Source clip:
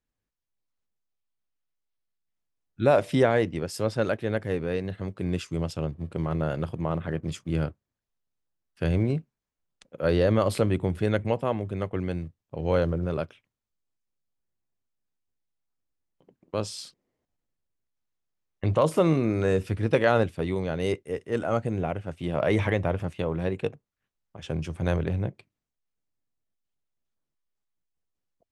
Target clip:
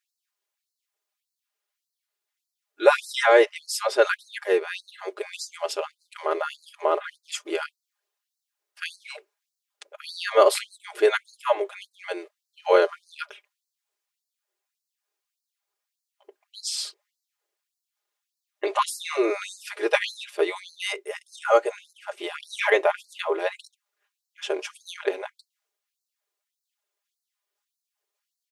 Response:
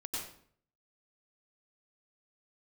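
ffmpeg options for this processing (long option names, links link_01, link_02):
-af "equalizer=frequency=260:width=4.4:gain=-10.5,aecho=1:1:4.9:0.86,afftfilt=real='re*gte(b*sr/1024,270*pow(4000/270,0.5+0.5*sin(2*PI*1.7*pts/sr)))':imag='im*gte(b*sr/1024,270*pow(4000/270,0.5+0.5*sin(2*PI*1.7*pts/sr)))':win_size=1024:overlap=0.75,volume=7dB"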